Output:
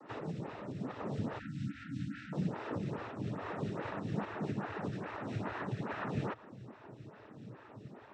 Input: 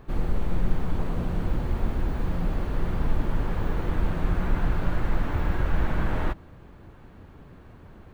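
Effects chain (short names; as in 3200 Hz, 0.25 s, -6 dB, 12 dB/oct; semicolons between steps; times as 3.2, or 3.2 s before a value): compressor, threshold -25 dBFS, peak gain reduction 11 dB; noise vocoder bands 12; 1.39–2.33 brick-wall FIR band-stop 310–1300 Hz; photocell phaser 2.4 Hz; gain +2.5 dB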